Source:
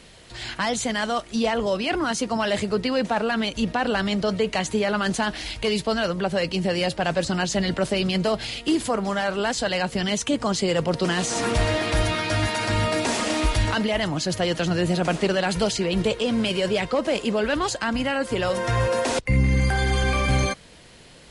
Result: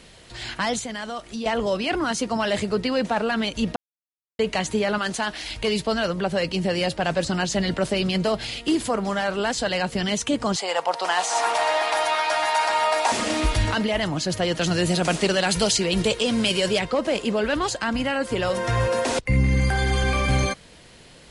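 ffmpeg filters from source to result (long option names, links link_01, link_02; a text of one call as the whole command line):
ffmpeg -i in.wav -filter_complex "[0:a]asettb=1/sr,asplit=3[link_01][link_02][link_03];[link_01]atrim=end=0.794[link_04];[link_02]atrim=start=0.79:end=1.46,asetpts=PTS-STARTPTS,afade=type=in:duration=0.004:curve=qsin,afade=type=out:start_time=0.666:duration=0.004:curve=qsin,acompressor=threshold=-33dB:ratio=2:attack=3.2:release=140:knee=1:detection=peak[link_05];[link_03]atrim=start=1.456[link_06];[link_04][link_05]acrossfade=duration=0.004:curve1=hsin:curve2=qsin[link_07];[link_07][link_06]acrossfade=duration=0.004:curve1=qsin:curve2=hsin,asettb=1/sr,asplit=3[link_08][link_09][link_10];[link_08]atrim=end=4.984[link_11];[link_09]atrim=start=4.98:end=5.51,asetpts=PTS-STARTPTS,afade=type=in:duration=0.004:curve=qsin,afade=type=out:start_time=0.526:duration=0.004:curve=qsin,lowshelf=frequency=370:gain=-8[link_12];[link_10]atrim=start=5.506[link_13];[link_11][link_12]acrossfade=duration=0.004:curve1=hsin:curve2=qsin[link_14];[link_14][link_13]acrossfade=duration=0.004:curve1=qsin:curve2=hsin,asettb=1/sr,asplit=3[link_15][link_16][link_17];[link_15]atrim=end=10.564[link_18];[link_16]atrim=start=10.56:end=13.12,asetpts=PTS-STARTPTS,afade=type=in:duration=0.004:curve=qsin,afade=type=out:start_time=2.556:duration=0.004:curve=qsin,highpass=frequency=810:width_type=q:width=3.7[link_19];[link_17]atrim=start=13.116[link_20];[link_18][link_19]acrossfade=duration=0.004:curve1=hsin:curve2=qsin[link_21];[link_21][link_20]acrossfade=duration=0.004:curve1=qsin:curve2=hsin,asettb=1/sr,asplit=3[link_22][link_23][link_24];[link_22]atrim=end=14.614[link_25];[link_23]atrim=start=14.61:end=16.79,asetpts=PTS-STARTPTS,afade=type=in:duration=0.004:curve=qsin,afade=type=out:start_time=2.176:duration=0.004:curve=qsin,highshelf=frequency=3300:gain=9.5[link_26];[link_24]atrim=start=16.786[link_27];[link_25][link_26]acrossfade=duration=0.004:curve1=hsin:curve2=qsin[link_28];[link_28][link_27]acrossfade=duration=0.004:curve1=qsin:curve2=hsin,asplit=3[link_29][link_30][link_31];[link_29]atrim=end=3.76,asetpts=PTS-STARTPTS,afade=type=out:start_time=3.756:duration=0.004:curve=hsin[link_32];[link_30]atrim=start=3.76:end=4.39,asetpts=PTS-STARTPTS,volume=0[link_33];[link_31]atrim=start=4.39,asetpts=PTS-STARTPTS,afade=type=in:duration=0.004:curve=hsin[link_34];[link_32][link_33][link_34]concat=n=3:v=0:a=1" out.wav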